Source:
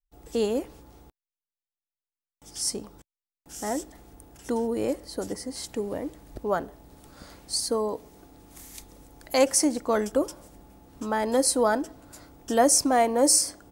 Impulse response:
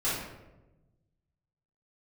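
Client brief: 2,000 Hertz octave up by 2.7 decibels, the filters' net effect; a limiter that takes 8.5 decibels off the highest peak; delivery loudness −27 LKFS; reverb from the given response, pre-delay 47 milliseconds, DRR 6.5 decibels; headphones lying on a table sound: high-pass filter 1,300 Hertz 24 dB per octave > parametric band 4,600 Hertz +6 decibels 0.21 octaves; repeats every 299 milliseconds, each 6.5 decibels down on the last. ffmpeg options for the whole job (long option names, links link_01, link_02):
-filter_complex "[0:a]equalizer=frequency=2000:width_type=o:gain=4,alimiter=limit=-15dB:level=0:latency=1,aecho=1:1:299|598|897|1196|1495|1794:0.473|0.222|0.105|0.0491|0.0231|0.0109,asplit=2[link_01][link_02];[1:a]atrim=start_sample=2205,adelay=47[link_03];[link_02][link_03]afir=irnorm=-1:irlink=0,volume=-15.5dB[link_04];[link_01][link_04]amix=inputs=2:normalize=0,highpass=frequency=1300:width=0.5412,highpass=frequency=1300:width=1.3066,equalizer=frequency=4600:width_type=o:width=0.21:gain=6,volume=3.5dB"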